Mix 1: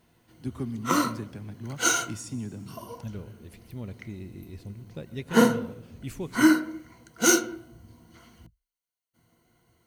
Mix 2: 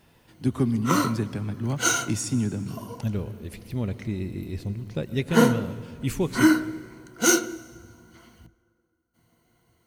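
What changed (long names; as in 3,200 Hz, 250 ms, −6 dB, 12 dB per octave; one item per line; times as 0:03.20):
speech +9.5 dB
background: send on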